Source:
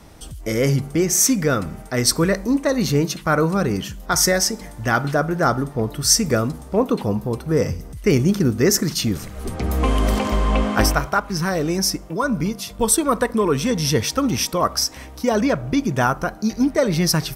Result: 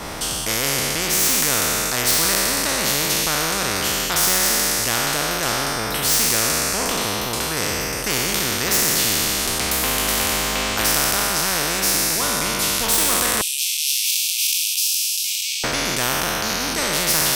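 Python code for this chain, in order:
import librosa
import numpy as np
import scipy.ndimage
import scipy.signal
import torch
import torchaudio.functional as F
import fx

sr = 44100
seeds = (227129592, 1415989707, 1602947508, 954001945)

y = fx.spec_trails(x, sr, decay_s=1.6)
y = fx.high_shelf(y, sr, hz=6300.0, db=-3.0)
y = 10.0 ** (-2.5 / 20.0) * np.tanh(y / 10.0 ** (-2.5 / 20.0))
y = fx.steep_highpass(y, sr, hz=2600.0, slope=96, at=(13.41, 15.64))
y = fx.spectral_comp(y, sr, ratio=4.0)
y = y * 10.0 ** (2.5 / 20.0)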